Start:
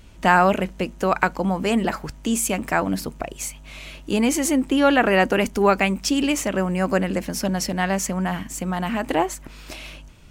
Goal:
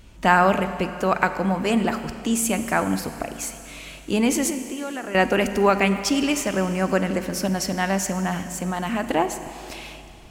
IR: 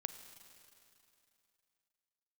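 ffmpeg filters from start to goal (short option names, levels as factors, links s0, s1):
-filter_complex "[0:a]asettb=1/sr,asplit=3[s0][s1][s2];[s0]atrim=end=4.504[s3];[s1]atrim=start=4.5:end=5.15,asetpts=PTS-STARTPTS,afade=t=in:d=0.004:c=qsin,afade=t=out:st=0.646:d=0.004:c=qsin,acompressor=threshold=0.0355:ratio=6[s4];[s2]atrim=start=5.146[s5];[s3][s4]acrossfade=d=0.004:c1=hsin:c2=qsin[s6];[s6][s5]acrossfade=d=0.004:c1=qsin:c2=hsin[s7];[1:a]atrim=start_sample=2205[s8];[s7][s8]afir=irnorm=-1:irlink=0,volume=1.19"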